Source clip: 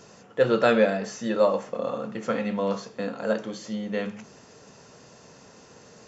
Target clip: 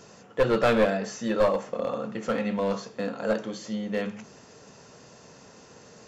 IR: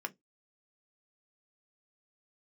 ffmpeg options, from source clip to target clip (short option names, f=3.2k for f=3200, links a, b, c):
-af "aeval=exprs='clip(val(0),-1,0.0944)':c=same"